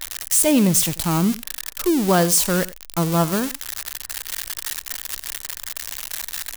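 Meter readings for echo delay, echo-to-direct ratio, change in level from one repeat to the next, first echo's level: 90 ms, -18.5 dB, no regular repeats, -18.5 dB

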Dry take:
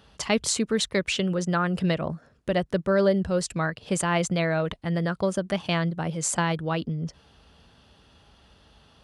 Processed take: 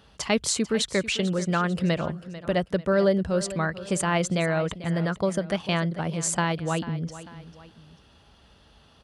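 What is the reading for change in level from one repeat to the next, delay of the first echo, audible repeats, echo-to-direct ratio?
-7.5 dB, 444 ms, 2, -14.5 dB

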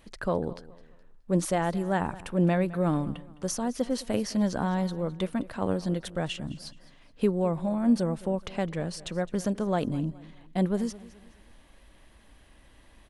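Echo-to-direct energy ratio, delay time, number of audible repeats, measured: -18.5 dB, 211 ms, 2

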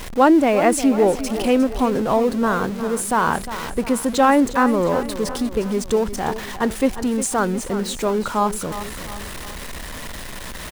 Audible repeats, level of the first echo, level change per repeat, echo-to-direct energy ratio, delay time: 3, -12.5 dB, -6.0 dB, -11.5 dB, 356 ms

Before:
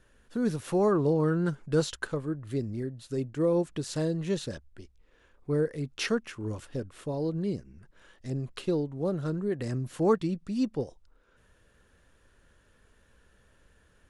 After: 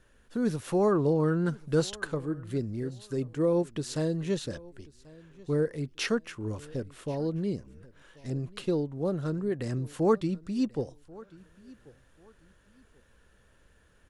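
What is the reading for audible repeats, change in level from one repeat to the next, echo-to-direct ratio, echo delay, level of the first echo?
2, -11.5 dB, -22.0 dB, 1087 ms, -22.5 dB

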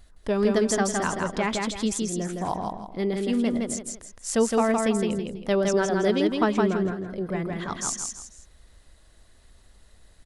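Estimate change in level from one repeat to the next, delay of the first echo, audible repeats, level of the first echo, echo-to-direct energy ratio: -9.5 dB, 164 ms, 3, -3.0 dB, -2.5 dB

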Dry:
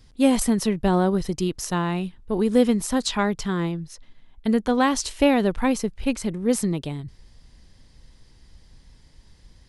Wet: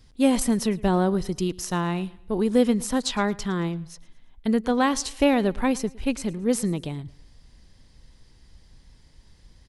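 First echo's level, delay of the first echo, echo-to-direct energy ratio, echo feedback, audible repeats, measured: -22.0 dB, 111 ms, -21.5 dB, 40%, 2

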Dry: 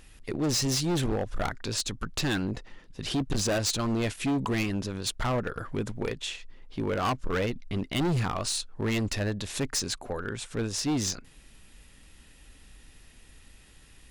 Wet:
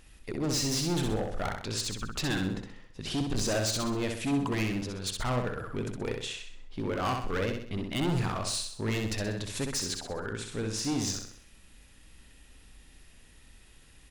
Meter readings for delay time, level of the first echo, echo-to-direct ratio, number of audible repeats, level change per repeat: 64 ms, -4.5 dB, -3.5 dB, 5, -7.0 dB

